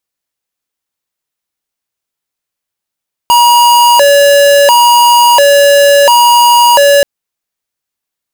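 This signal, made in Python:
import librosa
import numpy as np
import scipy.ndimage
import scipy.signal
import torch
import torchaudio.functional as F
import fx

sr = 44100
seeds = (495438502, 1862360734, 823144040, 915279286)

y = fx.siren(sr, length_s=3.73, kind='hi-lo', low_hz=568.0, high_hz=956.0, per_s=0.72, wave='square', level_db=-5.0)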